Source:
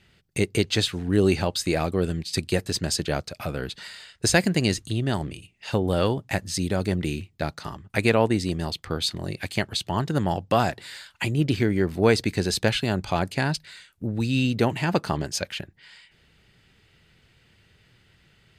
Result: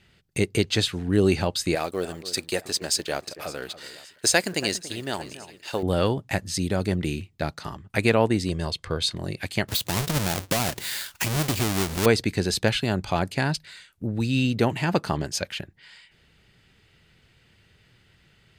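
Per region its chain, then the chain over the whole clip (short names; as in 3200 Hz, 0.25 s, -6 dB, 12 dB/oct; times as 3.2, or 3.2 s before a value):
1.75–5.83 G.711 law mismatch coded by A + tone controls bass -14 dB, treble +4 dB + echo with dull and thin repeats by turns 0.283 s, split 1900 Hz, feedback 60%, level -14 dB
8.49–9.15 LPF 11000 Hz 24 dB/oct + upward compressor, threshold -35 dBFS + comb 1.9 ms, depth 39%
9.68–12.06 half-waves squared off + high shelf 3100 Hz +10.5 dB + compressor 2.5:1, threshold -24 dBFS
whole clip: dry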